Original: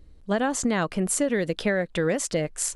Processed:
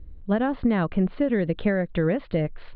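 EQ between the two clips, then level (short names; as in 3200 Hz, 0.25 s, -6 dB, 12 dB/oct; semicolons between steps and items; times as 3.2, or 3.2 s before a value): steep low-pass 4200 Hz 72 dB/oct; air absorption 280 m; low shelf 210 Hz +10.5 dB; -1.0 dB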